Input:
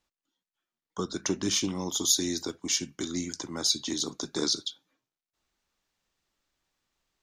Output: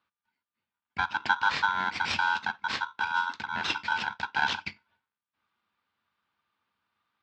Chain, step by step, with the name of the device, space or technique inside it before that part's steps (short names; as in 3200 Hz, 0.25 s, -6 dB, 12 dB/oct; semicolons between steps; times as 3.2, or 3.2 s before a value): ring modulator pedal into a guitar cabinet (polarity switched at an audio rate 1200 Hz; speaker cabinet 81–3800 Hz, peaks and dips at 90 Hz +7 dB, 210 Hz +7 dB, 390 Hz -3 dB, 590 Hz -5 dB, 940 Hz +6 dB, 1500 Hz +6 dB)